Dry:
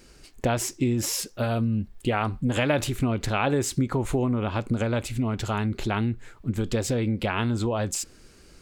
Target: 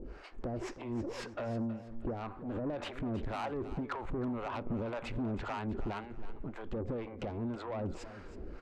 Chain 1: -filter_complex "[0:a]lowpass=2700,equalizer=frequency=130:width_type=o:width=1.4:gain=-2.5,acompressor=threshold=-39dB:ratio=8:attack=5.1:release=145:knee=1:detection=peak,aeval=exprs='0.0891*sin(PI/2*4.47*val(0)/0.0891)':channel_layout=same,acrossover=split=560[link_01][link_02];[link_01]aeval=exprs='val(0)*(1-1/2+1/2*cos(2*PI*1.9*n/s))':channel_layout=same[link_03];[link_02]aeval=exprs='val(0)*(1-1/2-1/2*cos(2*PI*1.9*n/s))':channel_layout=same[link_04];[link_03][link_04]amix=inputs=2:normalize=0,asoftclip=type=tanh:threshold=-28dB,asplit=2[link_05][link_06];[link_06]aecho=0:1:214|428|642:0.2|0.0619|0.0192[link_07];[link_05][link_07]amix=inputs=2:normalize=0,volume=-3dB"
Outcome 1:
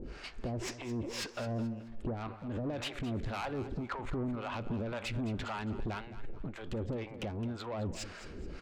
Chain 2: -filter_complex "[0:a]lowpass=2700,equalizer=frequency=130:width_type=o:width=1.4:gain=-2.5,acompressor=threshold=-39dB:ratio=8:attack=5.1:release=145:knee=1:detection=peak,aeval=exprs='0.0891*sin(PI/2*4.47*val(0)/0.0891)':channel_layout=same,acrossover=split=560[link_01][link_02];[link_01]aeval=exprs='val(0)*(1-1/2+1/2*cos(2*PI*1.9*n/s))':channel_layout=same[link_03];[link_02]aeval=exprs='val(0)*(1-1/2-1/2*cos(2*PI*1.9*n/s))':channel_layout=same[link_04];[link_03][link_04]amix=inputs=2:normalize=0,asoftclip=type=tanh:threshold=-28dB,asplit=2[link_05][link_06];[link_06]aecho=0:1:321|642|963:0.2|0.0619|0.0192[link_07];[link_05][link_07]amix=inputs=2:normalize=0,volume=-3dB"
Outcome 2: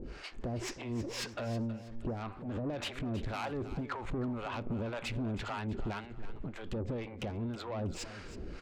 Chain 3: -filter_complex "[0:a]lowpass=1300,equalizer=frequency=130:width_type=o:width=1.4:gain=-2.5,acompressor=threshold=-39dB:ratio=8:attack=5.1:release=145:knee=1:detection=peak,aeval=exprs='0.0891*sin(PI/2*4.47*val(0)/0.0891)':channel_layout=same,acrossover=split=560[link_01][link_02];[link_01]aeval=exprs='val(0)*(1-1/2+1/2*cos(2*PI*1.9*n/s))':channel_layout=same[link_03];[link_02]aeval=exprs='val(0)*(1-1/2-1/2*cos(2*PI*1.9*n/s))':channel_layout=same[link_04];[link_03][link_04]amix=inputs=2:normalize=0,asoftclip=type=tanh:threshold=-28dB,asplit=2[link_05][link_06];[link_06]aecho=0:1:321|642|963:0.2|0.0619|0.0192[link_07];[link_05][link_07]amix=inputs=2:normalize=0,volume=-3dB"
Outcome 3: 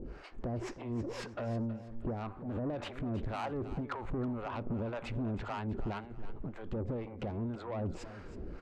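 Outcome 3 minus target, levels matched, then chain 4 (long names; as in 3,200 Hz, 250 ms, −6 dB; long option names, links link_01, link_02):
125 Hz band +2.5 dB
-filter_complex "[0:a]lowpass=1300,equalizer=frequency=130:width_type=o:width=1.4:gain=-10,acompressor=threshold=-39dB:ratio=8:attack=5.1:release=145:knee=1:detection=peak,aeval=exprs='0.0891*sin(PI/2*4.47*val(0)/0.0891)':channel_layout=same,acrossover=split=560[link_01][link_02];[link_01]aeval=exprs='val(0)*(1-1/2+1/2*cos(2*PI*1.9*n/s))':channel_layout=same[link_03];[link_02]aeval=exprs='val(0)*(1-1/2-1/2*cos(2*PI*1.9*n/s))':channel_layout=same[link_04];[link_03][link_04]amix=inputs=2:normalize=0,asoftclip=type=tanh:threshold=-28dB,asplit=2[link_05][link_06];[link_06]aecho=0:1:321|642|963:0.2|0.0619|0.0192[link_07];[link_05][link_07]amix=inputs=2:normalize=0,volume=-3dB"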